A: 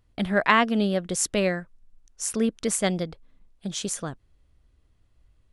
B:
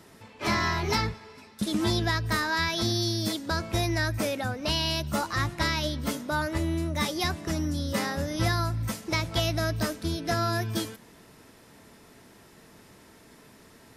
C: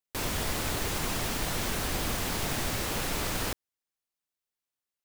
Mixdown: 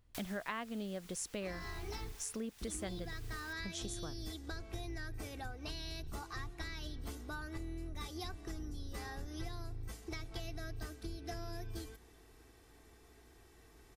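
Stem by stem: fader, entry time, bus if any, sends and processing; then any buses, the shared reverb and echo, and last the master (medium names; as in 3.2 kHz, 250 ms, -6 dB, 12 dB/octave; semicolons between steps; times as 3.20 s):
-4.0 dB, 0.00 s, no send, none
-11.5 dB, 1.00 s, no send, octave divider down 2 oct, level +2 dB; comb 2.6 ms, depth 62%
-7.5 dB, 0.00 s, no send, amplifier tone stack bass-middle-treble 10-0-10; auto duck -9 dB, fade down 1.55 s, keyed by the first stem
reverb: none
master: compression 4:1, threshold -41 dBFS, peak gain reduction 19 dB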